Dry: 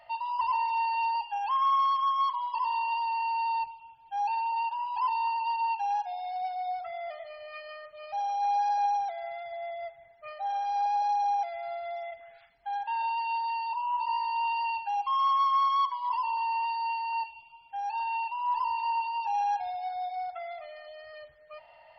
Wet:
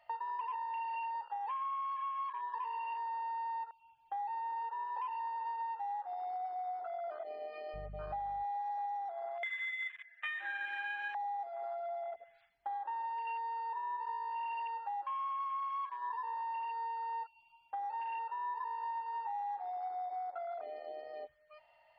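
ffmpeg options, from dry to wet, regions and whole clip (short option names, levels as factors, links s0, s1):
-filter_complex "[0:a]asettb=1/sr,asplit=3[s0][s1][s2];[s0]atrim=end=7.744[s3];[s1]atrim=start=7.74:end=8.44,asetpts=PTS-STARTPTS,afade=t=in:d=0.004:c=qsin,afade=t=out:st=0.696:d=0.004:c=qsin,lowpass=3800,lowshelf=f=210:g=-4.5,aeval=exprs='val(0)+0.00447*(sin(2*PI*50*n/s)+sin(2*PI*2*50*n/s)/2+sin(2*PI*3*50*n/s)/3+sin(2*PI*4*50*n/s)/4+sin(2*PI*5*50*n/s)/5)':c=same[s4];[s2]atrim=start=8.436[s5];[s3][s4]acrossfade=d=0.004:c1=hsin:c2=qsin[s6];[s6][s5]acrossfade=d=0.004:c1=qsin:c2=hsin,asettb=1/sr,asplit=3[s7][s8][s9];[s7]atrim=end=9.434[s10];[s8]atrim=start=9.43:end=11.15,asetpts=PTS-STARTPTS,afade=t=in:d=0.004:c=qsin,afade=t=out:st=1.716:d=0.004:c=qsin,highpass=f=1700:t=q:w=12,equalizer=f=2200:t=o:w=1.1:g=10[s11];[s9]atrim=start=11.146[s12];[s10][s11]acrossfade=d=0.004:c1=hsin:c2=qsin[s13];[s13][s12]acrossfade=d=0.004:c1=qsin:c2=hsin,afwtdn=0.0141,equalizer=f=2200:t=o:w=2.4:g=3,acompressor=threshold=0.00794:ratio=6,volume=1.5"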